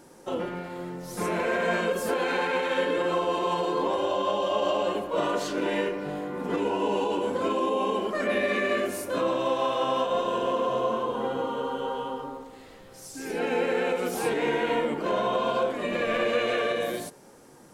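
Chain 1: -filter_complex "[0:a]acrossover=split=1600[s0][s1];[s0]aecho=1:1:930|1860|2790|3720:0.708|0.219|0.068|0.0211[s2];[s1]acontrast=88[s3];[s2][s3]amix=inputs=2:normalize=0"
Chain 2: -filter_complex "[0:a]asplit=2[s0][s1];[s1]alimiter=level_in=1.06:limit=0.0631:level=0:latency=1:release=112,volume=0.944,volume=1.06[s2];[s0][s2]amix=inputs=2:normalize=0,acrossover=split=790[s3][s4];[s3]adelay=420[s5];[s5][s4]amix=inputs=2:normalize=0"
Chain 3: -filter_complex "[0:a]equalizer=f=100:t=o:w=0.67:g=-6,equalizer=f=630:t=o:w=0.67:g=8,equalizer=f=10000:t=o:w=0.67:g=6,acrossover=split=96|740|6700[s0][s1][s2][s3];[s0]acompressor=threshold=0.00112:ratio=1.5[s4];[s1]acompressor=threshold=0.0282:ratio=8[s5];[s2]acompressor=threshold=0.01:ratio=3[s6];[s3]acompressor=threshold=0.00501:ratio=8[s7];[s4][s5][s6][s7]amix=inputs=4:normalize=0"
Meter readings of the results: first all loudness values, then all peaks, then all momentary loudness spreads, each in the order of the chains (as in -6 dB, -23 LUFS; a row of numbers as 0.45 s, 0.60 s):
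-24.5 LUFS, -25.0 LUFS, -32.5 LUFS; -10.0 dBFS, -11.0 dBFS, -19.5 dBFS; 8 LU, 6 LU, 4 LU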